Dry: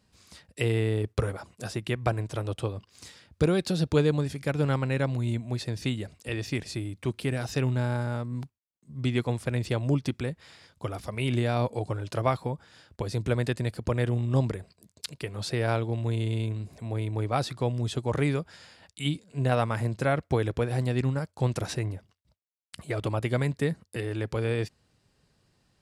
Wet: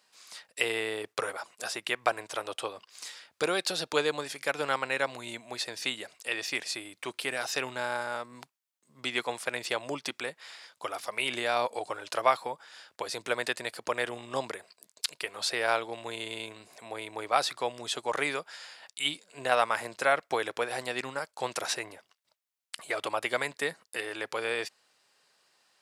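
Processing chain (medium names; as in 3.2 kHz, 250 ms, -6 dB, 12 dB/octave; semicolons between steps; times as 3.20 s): high-pass 750 Hz 12 dB/octave; trim +5.5 dB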